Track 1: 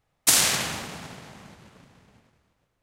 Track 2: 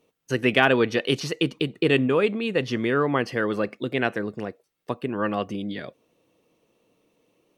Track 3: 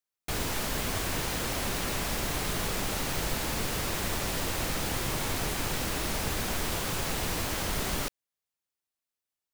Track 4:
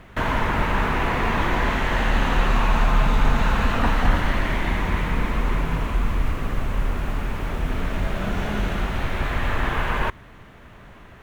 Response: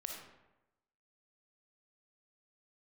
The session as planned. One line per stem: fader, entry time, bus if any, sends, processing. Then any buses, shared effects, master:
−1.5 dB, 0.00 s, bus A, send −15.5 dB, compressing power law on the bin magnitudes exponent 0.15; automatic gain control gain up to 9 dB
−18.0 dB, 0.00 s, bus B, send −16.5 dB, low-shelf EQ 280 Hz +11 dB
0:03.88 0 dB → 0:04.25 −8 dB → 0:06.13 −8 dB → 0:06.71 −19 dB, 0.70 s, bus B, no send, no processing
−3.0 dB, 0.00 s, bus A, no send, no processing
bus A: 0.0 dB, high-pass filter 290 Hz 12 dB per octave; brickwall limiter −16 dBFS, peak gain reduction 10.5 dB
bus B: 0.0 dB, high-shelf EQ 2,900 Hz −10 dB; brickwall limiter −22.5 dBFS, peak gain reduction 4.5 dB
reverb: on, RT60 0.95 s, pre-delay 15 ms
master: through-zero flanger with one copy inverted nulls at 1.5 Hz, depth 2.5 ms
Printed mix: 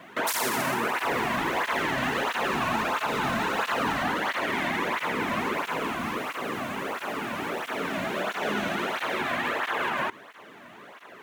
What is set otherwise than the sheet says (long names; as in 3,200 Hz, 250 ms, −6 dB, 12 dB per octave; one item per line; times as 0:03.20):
stem 1: missing automatic gain control gain up to 9 dB
stem 4 −3.0 dB → +5.0 dB